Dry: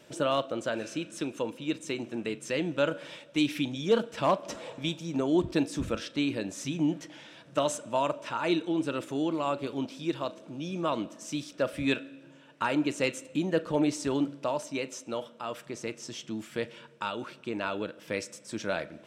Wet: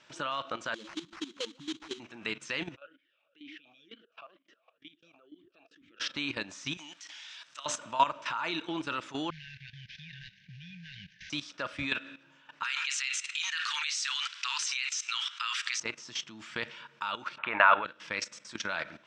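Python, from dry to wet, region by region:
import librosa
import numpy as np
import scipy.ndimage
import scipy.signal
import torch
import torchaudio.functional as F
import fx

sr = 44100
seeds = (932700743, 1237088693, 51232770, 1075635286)

y = fx.chain(x, sr, fx.spec_expand(power=3.4),
    fx.sample_hold(seeds[0], rate_hz=3600.0, jitter_pct=20), at=(0.74, 2.0))
y = fx.chain(y, sr, fx.level_steps(step_db=20),
    fx.vowel_sweep(vowels='a-i', hz=2.1), at=(2.76, 6.0))
y = fx.chain(y, sr, fx.differentiator(),
    fx.env_flatten(amount_pct=50), at=(6.77, 7.66))
y = fx.chain(y, sr, fx.cvsd(bps=32000),
    fx.brickwall_bandstop(low_hz=190.0, high_hz=1500.0),
    fx.bass_treble(bass_db=6, treble_db=-15), at=(9.3, 11.3))
y = fx.chain(y, sr, fx.bessel_highpass(hz=2400.0, order=8),
    fx.env_flatten(amount_pct=70), at=(12.63, 15.8))
y = fx.chain(y, sr, fx.steep_lowpass(hz=3900.0, slope=72),
    fx.band_shelf(hz=1100.0, db=14.0, octaves=2.5), at=(17.38, 17.85))
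y = scipy.signal.sosfilt(scipy.signal.butter(4, 6300.0, 'lowpass', fs=sr, output='sos'), y)
y = fx.low_shelf_res(y, sr, hz=750.0, db=-10.5, q=1.5)
y = fx.level_steps(y, sr, step_db=14)
y = y * librosa.db_to_amplitude(8.5)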